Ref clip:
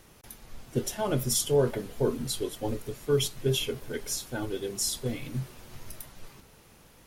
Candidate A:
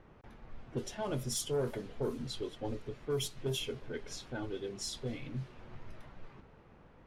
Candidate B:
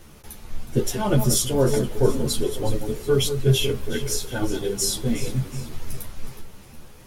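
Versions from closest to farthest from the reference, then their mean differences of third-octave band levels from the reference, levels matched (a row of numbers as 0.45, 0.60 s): B, A; 3.0, 5.5 dB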